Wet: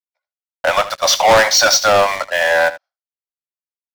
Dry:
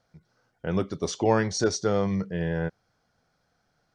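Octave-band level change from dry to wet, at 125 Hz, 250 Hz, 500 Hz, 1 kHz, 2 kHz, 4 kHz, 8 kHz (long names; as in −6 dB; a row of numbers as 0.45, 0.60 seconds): −6.0, −5.5, +11.5, +18.0, +21.0, +21.5, +18.0 decibels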